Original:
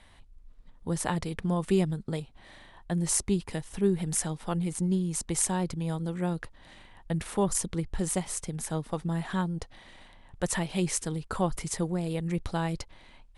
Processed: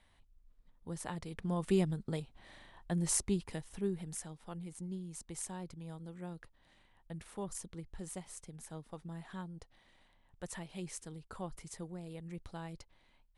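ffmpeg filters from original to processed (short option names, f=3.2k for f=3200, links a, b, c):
-af "volume=-5dB,afade=t=in:st=1.21:d=0.51:silence=0.446684,afade=t=out:st=3.12:d=1.11:silence=0.316228"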